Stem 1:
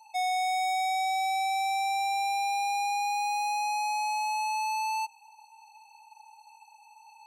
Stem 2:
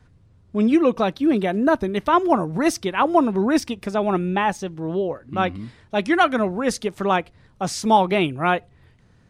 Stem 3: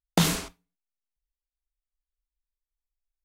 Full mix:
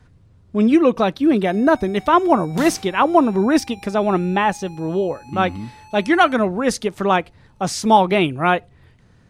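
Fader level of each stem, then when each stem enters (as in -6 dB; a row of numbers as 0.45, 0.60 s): -15.5, +3.0, -8.5 dB; 1.30, 0.00, 2.40 s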